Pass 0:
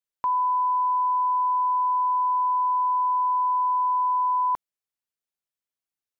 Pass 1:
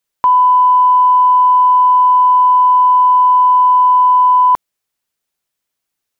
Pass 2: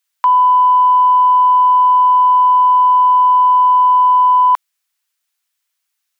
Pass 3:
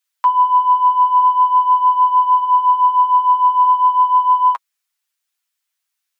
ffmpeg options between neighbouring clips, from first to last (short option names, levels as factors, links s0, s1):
-af "acontrast=82,volume=2.24"
-af "highpass=1200,volume=1.58"
-af "flanger=delay=6.3:depth=8:regen=14:speed=0.41:shape=triangular"